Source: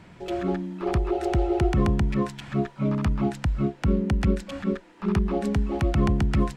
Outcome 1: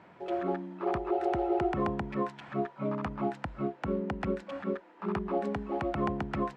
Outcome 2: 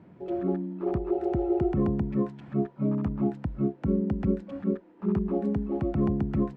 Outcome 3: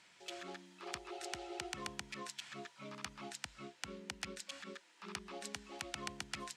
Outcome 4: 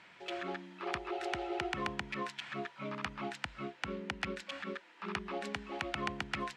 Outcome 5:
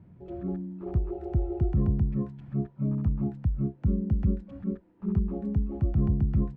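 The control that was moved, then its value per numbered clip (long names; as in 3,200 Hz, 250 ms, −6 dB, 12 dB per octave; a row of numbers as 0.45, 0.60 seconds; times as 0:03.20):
resonant band-pass, frequency: 800, 290, 6,600, 2,500, 100 Hertz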